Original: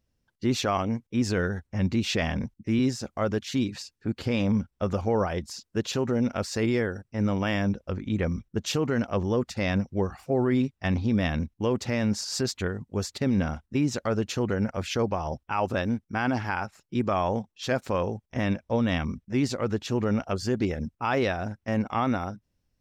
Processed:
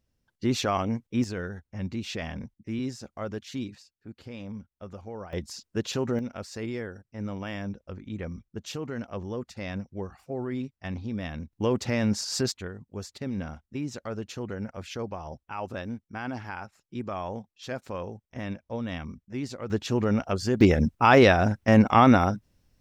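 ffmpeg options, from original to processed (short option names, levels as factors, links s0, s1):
-af "asetnsamples=n=441:p=0,asendcmd='1.24 volume volume -7.5dB;3.75 volume volume -14.5dB;5.33 volume volume -1.5dB;6.19 volume volume -8.5dB;11.53 volume volume 0.5dB;12.52 volume volume -8dB;19.7 volume volume 1dB;20.61 volume volume 9dB',volume=0.944"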